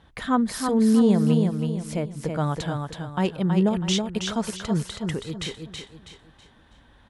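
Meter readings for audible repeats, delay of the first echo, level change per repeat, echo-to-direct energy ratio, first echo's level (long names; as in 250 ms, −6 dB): 4, 324 ms, −9.0 dB, −4.5 dB, −5.0 dB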